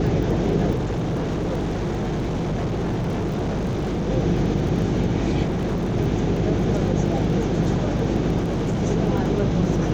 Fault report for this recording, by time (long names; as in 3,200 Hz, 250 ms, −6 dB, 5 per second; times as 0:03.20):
surface crackle 19 per second −29 dBFS
mains hum 50 Hz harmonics 7 −26 dBFS
0:00.74–0:04.09: clipping −21 dBFS
0:05.44–0:05.97: clipping −20 dBFS
0:08.40–0:08.83: clipping −19.5 dBFS